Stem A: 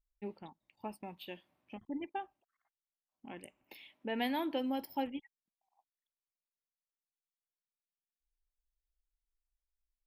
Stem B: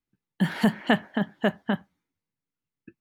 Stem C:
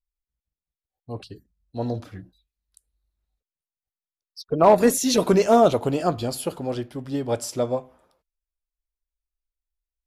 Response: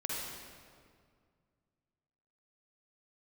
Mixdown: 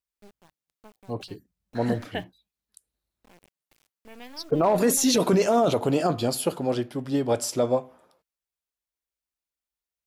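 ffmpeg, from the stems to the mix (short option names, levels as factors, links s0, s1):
-filter_complex "[0:a]acrusher=bits=5:dc=4:mix=0:aa=0.000001,volume=0.447[s0];[1:a]asplit=2[s1][s2];[s2]afreqshift=1.2[s3];[s1][s3]amix=inputs=2:normalize=1,adelay=1250,volume=0.447[s4];[2:a]highpass=120,volume=1.33,asplit=2[s5][s6];[s6]apad=whole_len=187848[s7];[s4][s7]sidechaingate=range=0.00112:threshold=0.00794:ratio=16:detection=peak[s8];[s0][s8][s5]amix=inputs=3:normalize=0,alimiter=limit=0.237:level=0:latency=1:release=11"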